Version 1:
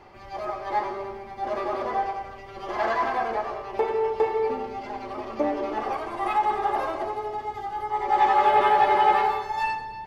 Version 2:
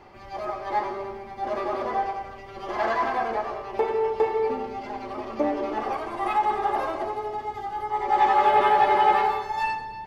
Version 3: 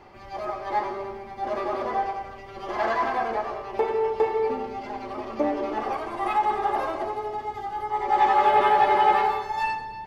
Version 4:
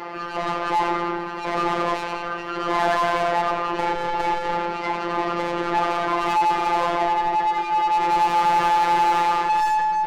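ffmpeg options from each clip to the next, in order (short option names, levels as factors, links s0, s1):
-af "equalizer=f=230:w=1.5:g=2"
-af anull
-filter_complex "[0:a]asplit=2[s0][s1];[s1]highpass=f=720:p=1,volume=44.7,asoftclip=type=tanh:threshold=0.355[s2];[s0][s2]amix=inputs=2:normalize=0,lowpass=f=1800:p=1,volume=0.501,afftfilt=real='hypot(re,im)*cos(PI*b)':imag='0':win_size=1024:overlap=0.75,volume=0.841"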